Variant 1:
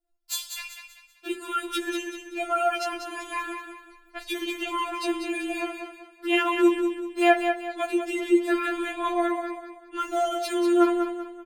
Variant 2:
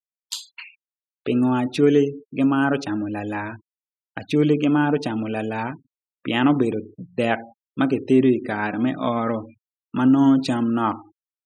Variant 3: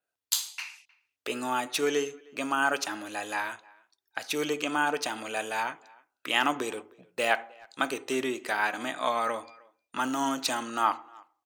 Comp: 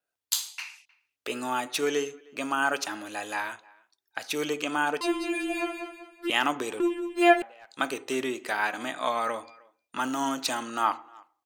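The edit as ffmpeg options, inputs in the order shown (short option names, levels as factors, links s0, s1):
-filter_complex "[0:a]asplit=2[s0][s1];[2:a]asplit=3[s2][s3][s4];[s2]atrim=end=5.012[s5];[s0]atrim=start=5.008:end=6.302[s6];[s3]atrim=start=6.298:end=6.802[s7];[s1]atrim=start=6.798:end=7.422[s8];[s4]atrim=start=7.418[s9];[s5][s6]acrossfade=d=0.004:c1=hsin:c2=hsin[s10];[s10][s7]acrossfade=d=0.004:c1=hsin:c2=hsin[s11];[s11][s8]acrossfade=d=0.004:c1=hsin:c2=hsin[s12];[s12][s9]acrossfade=d=0.004:c1=hsin:c2=hsin"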